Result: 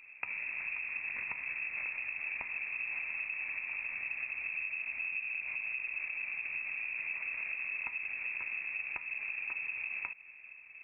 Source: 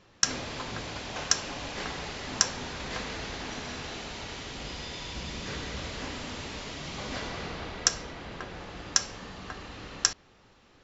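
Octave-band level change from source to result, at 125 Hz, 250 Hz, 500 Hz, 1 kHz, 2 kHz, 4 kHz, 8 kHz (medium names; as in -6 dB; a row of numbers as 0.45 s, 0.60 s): under -25 dB, under -25 dB, under -20 dB, -15.5 dB, +4.5 dB, under -30 dB, no reading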